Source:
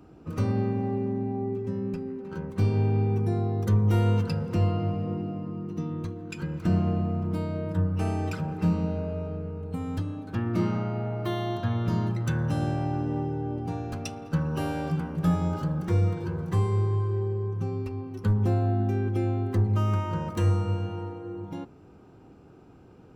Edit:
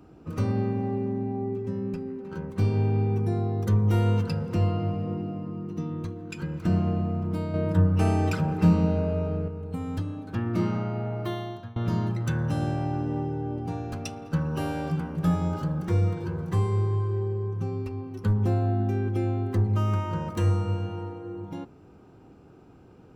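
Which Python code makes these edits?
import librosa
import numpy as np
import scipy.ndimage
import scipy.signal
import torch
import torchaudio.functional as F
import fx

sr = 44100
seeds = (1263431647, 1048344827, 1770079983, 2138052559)

y = fx.edit(x, sr, fx.clip_gain(start_s=7.54, length_s=1.94, db=5.0),
    fx.fade_out_to(start_s=11.2, length_s=0.56, floor_db=-22.5), tone=tone)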